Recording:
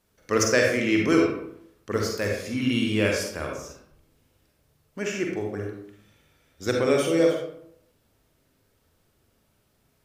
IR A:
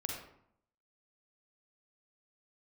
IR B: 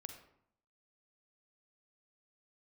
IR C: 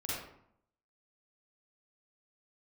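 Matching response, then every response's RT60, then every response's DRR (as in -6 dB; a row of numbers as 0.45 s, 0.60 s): A; 0.70 s, 0.70 s, 0.70 s; 0.0 dB, 5.5 dB, -8.0 dB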